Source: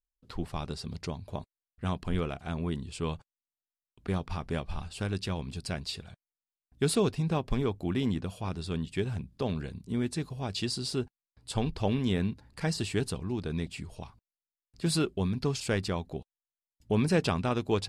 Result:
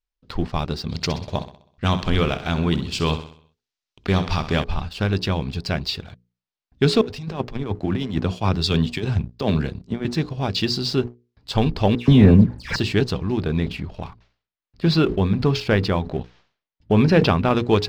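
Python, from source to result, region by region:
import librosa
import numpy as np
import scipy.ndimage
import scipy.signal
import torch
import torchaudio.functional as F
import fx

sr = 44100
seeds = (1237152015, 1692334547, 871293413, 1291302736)

y = fx.chain(x, sr, fx.high_shelf(hz=3200.0, db=12.0),
    fx.echo_feedback(ms=64, feedback_pct=55, wet_db=-12.0), at=(0.89, 4.64))
y = fx.chain(y, sr, fx.high_shelf(hz=7900.0, db=9.0),
    fx.over_compress(threshold_db=-31.0, ratio=-0.5),
    fx.band_widen(depth_pct=100), at=(7.01, 10.05))
y = fx.chain(y, sr, fx.low_shelf(hz=470.0, db=10.0),
    fx.dispersion(late='lows', ms=130.0, hz=2300.0),
    fx.resample_linear(factor=2), at=(11.95, 12.76))
y = fx.chain(y, sr, fx.gaussian_blur(sigma=1.7),
    fx.sustainer(db_per_s=130.0), at=(13.37, 17.57))
y = scipy.signal.sosfilt(scipy.signal.butter(4, 5500.0, 'lowpass', fs=sr, output='sos'), y)
y = fx.hum_notches(y, sr, base_hz=60, count=8)
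y = fx.leveller(y, sr, passes=1)
y = F.gain(torch.from_numpy(y), 7.5).numpy()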